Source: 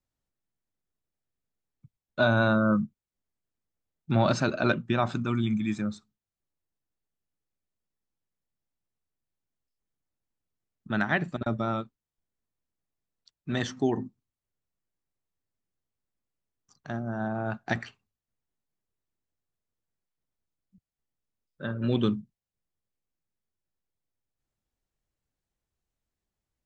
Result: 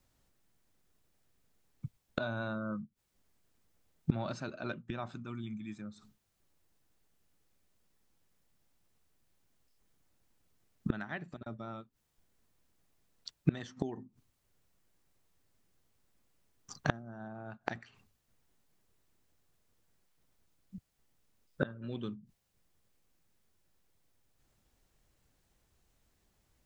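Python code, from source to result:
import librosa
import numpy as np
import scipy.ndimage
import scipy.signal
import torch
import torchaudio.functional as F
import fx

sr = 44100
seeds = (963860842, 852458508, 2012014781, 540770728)

y = fx.gate_flip(x, sr, shuts_db=-28.0, range_db=-28)
y = y * librosa.db_to_amplitude(13.5)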